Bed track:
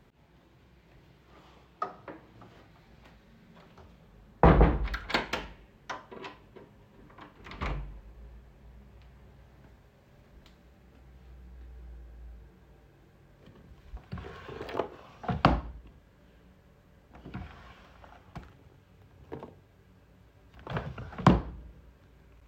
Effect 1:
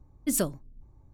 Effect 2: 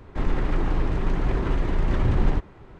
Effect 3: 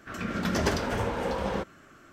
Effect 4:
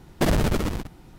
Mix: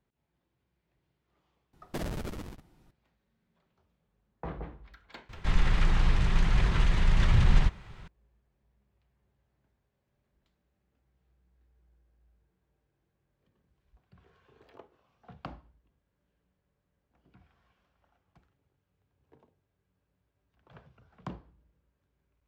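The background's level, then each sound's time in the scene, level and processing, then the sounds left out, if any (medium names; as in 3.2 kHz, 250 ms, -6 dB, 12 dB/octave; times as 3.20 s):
bed track -20 dB
1.73 s: add 4 -14.5 dB
5.29 s: add 2 -0.5 dB + FFT filter 180 Hz 0 dB, 280 Hz -13 dB, 3.5 kHz +8 dB
not used: 1, 3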